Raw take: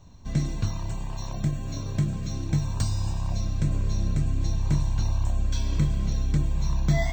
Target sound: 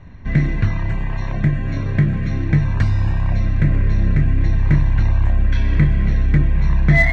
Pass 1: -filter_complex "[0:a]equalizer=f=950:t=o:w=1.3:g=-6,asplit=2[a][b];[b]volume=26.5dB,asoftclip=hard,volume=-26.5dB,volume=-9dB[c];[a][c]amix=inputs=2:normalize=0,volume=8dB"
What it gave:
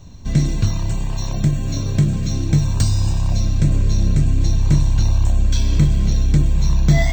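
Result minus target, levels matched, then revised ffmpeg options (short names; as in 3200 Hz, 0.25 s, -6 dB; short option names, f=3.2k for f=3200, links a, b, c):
2000 Hz band -10.5 dB
-filter_complex "[0:a]lowpass=f=1.9k:t=q:w=4.6,equalizer=f=950:t=o:w=1.3:g=-6,asplit=2[a][b];[b]volume=26.5dB,asoftclip=hard,volume=-26.5dB,volume=-9dB[c];[a][c]amix=inputs=2:normalize=0,volume=8dB"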